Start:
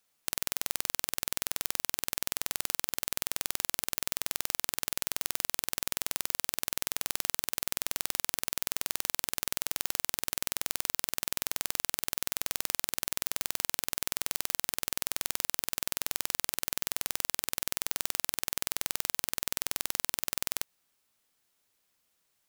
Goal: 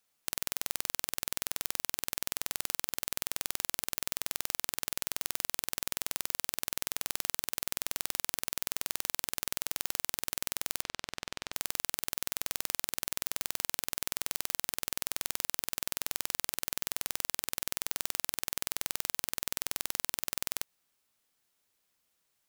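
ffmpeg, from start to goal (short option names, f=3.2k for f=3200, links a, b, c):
-filter_complex "[0:a]asettb=1/sr,asplit=3[a][b][c];[a]atrim=end=10.824[d];[b]atrim=start=10.82:end=11.53,asetpts=PTS-STARTPTS,afade=t=in:d=0.004:c=qsin,afade=t=out:st=0.706:d=0.004:c=qsin,lowpass=4.7k[e];[c]atrim=start=11.526[f];[d][e]acrossfade=d=0.004:c1=hsin:c2=qsin[g];[g][f]acrossfade=d=0.004:c1=qsin:c2=hsin,volume=-2dB"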